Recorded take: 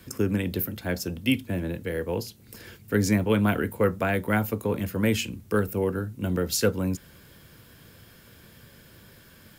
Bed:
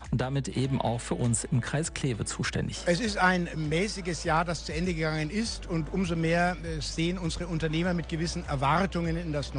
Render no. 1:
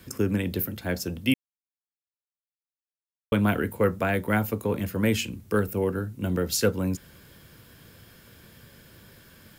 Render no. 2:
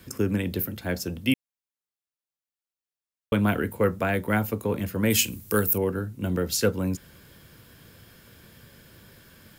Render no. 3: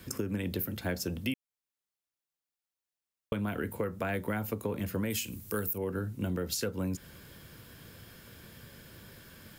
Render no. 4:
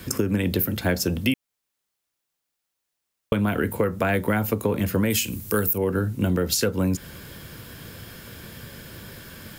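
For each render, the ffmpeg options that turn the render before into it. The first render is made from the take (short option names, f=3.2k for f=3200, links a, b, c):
-filter_complex "[0:a]asplit=3[a][b][c];[a]atrim=end=1.34,asetpts=PTS-STARTPTS,afade=t=out:st=1.336:d=0.004:c=hsin[d];[b]atrim=start=1.34:end=3.32,asetpts=PTS-STARTPTS,volume=0[e];[c]atrim=start=3.32,asetpts=PTS-STARTPTS,afade=t=in:d=0.004:c=hsin[f];[d][e][f]concat=n=3:v=0:a=1"
-filter_complex "[0:a]asettb=1/sr,asplit=3[a][b][c];[a]atrim=end=5.104[d];[b]atrim=start=5.1:end=5.78,asetpts=PTS-STARTPTS,afade=t=in:d=0.004:c=qsin,afade=t=out:st=0.676:d=0.004:c=qsin,aemphasis=mode=production:type=75kf[e];[c]atrim=start=5.776[f];[d][e]acrossfade=d=0.004:c1=hsin:c2=qsin[g];[g][f]acrossfade=d=0.004:c1=qsin:c2=hsin"
-af "alimiter=limit=-17.5dB:level=0:latency=1:release=345,acompressor=threshold=-29dB:ratio=6"
-af "volume=10.5dB"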